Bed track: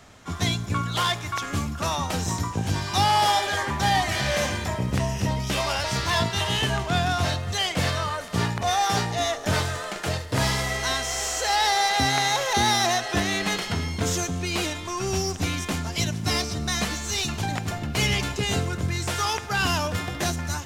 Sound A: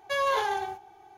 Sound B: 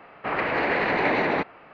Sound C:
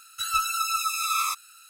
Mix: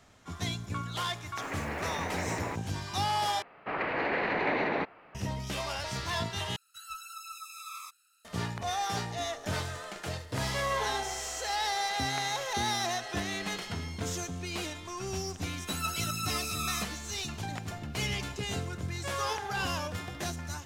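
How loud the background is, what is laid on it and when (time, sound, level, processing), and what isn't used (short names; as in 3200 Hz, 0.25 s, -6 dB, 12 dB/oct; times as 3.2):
bed track -9.5 dB
1.13 add B -13 dB + sample gate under -36.5 dBFS
3.42 replace with B -6.5 dB
6.56 replace with C -17.5 dB
10.44 add A -6 dB
15.49 add C -7.5 dB + HPF 1400 Hz
18.94 add A -10 dB + reverse delay 0.52 s, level -7.5 dB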